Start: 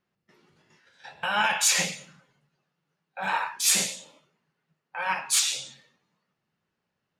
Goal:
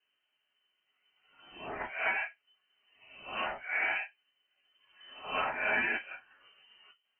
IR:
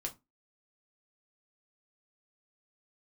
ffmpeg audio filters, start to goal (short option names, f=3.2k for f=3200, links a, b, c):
-filter_complex "[0:a]areverse[a];[1:a]atrim=start_sample=2205,asetrate=52920,aresample=44100[b];[a][b]afir=irnorm=-1:irlink=0,acrossover=split=380|2500[c][d][e];[c]acompressor=threshold=-52dB:ratio=4[f];[d]acompressor=threshold=-32dB:ratio=4[g];[e]acompressor=threshold=-32dB:ratio=4[h];[f][g][h]amix=inputs=3:normalize=0,lowpass=f=2.7k:t=q:w=0.5098,lowpass=f=2.7k:t=q:w=0.6013,lowpass=f=2.7k:t=q:w=0.9,lowpass=f=2.7k:t=q:w=2.563,afreqshift=-3200,volume=2.5dB"